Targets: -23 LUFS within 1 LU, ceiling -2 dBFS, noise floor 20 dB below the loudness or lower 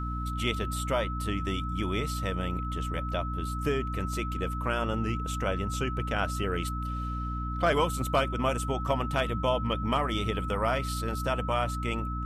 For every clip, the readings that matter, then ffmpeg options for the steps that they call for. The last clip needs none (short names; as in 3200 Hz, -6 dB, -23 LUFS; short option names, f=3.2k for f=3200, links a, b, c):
hum 60 Hz; harmonics up to 300 Hz; hum level -31 dBFS; steady tone 1300 Hz; tone level -36 dBFS; loudness -30.0 LUFS; peak -13.5 dBFS; loudness target -23.0 LUFS
-> -af "bandreject=f=60:t=h:w=6,bandreject=f=120:t=h:w=6,bandreject=f=180:t=h:w=6,bandreject=f=240:t=h:w=6,bandreject=f=300:t=h:w=6"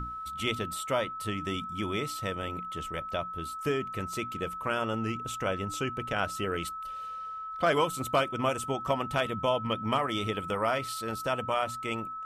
hum none; steady tone 1300 Hz; tone level -36 dBFS
-> -af "bandreject=f=1.3k:w=30"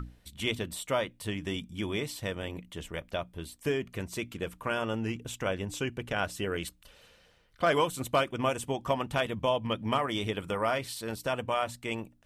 steady tone none; loudness -32.5 LUFS; peak -14.5 dBFS; loudness target -23.0 LUFS
-> -af "volume=9.5dB"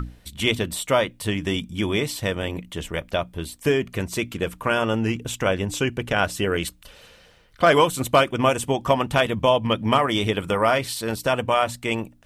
loudness -23.0 LUFS; peak -5.0 dBFS; noise floor -53 dBFS